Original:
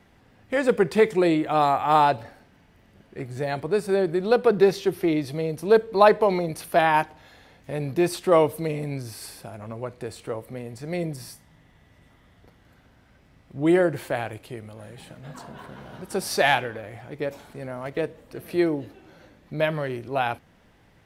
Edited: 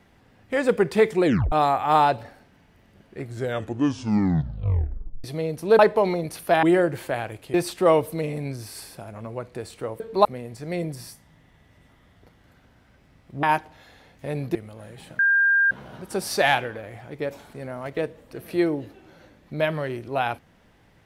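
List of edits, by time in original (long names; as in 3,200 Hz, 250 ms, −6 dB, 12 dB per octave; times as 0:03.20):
0:01.25: tape stop 0.27 s
0:03.22: tape stop 2.02 s
0:05.79–0:06.04: move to 0:10.46
0:06.88–0:08.00: swap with 0:13.64–0:14.55
0:15.19–0:15.71: beep over 1,600 Hz −15.5 dBFS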